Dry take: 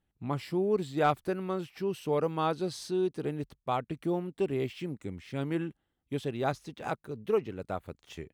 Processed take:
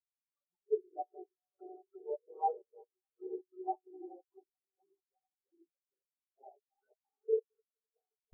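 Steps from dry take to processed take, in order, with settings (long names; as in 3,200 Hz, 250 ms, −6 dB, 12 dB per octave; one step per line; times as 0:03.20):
random phases in long frames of 200 ms
high-pass filter 660 Hz 12 dB per octave
on a send: echo that builds up and dies away 87 ms, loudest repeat 5, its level −9.5 dB
on the sum: gate pattern "xx.xx.xxx.x..." 132 BPM −12 dB
flanger swept by the level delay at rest 4.8 ms, full sweep at −32.5 dBFS
spectral tilt −2 dB per octave
every bin expanded away from the loudest bin 4 to 1
level +1 dB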